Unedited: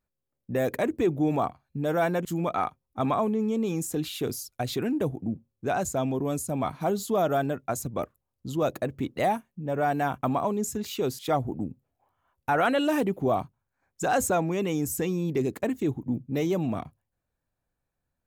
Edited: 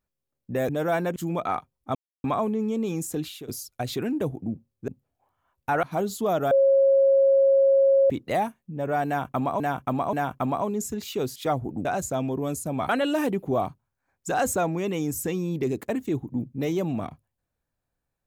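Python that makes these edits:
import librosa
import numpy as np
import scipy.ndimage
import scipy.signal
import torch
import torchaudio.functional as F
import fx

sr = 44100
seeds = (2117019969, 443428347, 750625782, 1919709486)

y = fx.edit(x, sr, fx.cut(start_s=0.69, length_s=1.09),
    fx.insert_silence(at_s=3.04, length_s=0.29),
    fx.fade_out_to(start_s=3.91, length_s=0.37, curve='qsin', floor_db=-19.5),
    fx.swap(start_s=5.68, length_s=1.04, other_s=11.68, other_length_s=0.95),
    fx.bleep(start_s=7.4, length_s=1.59, hz=545.0, db=-15.0),
    fx.repeat(start_s=9.96, length_s=0.53, count=3), tone=tone)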